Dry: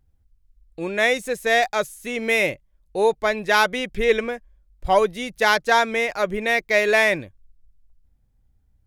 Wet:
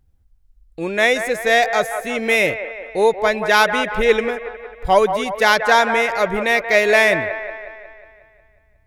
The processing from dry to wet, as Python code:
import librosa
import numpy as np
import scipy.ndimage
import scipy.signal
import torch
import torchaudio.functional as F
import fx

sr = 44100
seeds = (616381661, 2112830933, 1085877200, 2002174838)

y = fx.echo_wet_bandpass(x, sr, ms=181, feedback_pct=56, hz=1000.0, wet_db=-7.5)
y = y * librosa.db_to_amplitude(3.5)